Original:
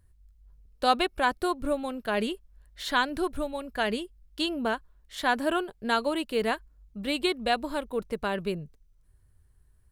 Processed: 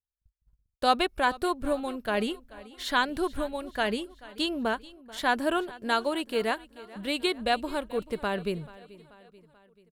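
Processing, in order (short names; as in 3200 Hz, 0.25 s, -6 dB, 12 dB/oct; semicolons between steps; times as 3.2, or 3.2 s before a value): gate -51 dBFS, range -39 dB; 5.74–7.34 low shelf 160 Hz -7 dB; feedback echo 0.435 s, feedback 55%, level -20 dB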